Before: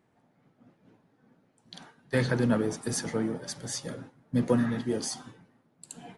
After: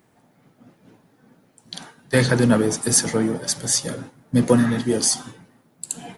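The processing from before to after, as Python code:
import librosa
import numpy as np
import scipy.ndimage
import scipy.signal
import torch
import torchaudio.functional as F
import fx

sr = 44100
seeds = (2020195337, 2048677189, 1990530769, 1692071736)

y = fx.high_shelf(x, sr, hz=5900.0, db=12.0)
y = y * 10.0 ** (8.5 / 20.0)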